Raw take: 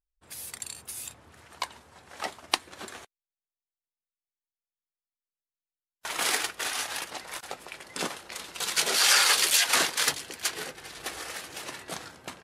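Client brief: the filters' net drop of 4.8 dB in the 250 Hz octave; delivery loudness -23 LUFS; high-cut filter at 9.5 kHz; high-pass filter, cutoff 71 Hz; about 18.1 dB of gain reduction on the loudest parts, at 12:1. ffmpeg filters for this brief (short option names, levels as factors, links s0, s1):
-af "highpass=71,lowpass=9500,equalizer=f=250:t=o:g=-7,acompressor=threshold=0.0158:ratio=12,volume=7.08"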